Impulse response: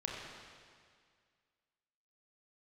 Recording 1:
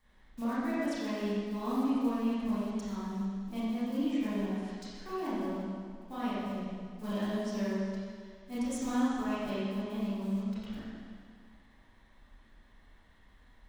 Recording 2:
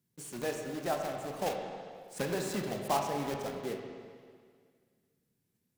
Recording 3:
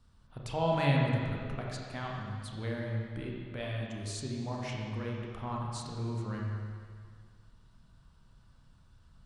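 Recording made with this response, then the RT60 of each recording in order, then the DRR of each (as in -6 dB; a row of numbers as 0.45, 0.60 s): 3; 2.0, 2.0, 2.0 s; -12.0, 2.0, -2.5 dB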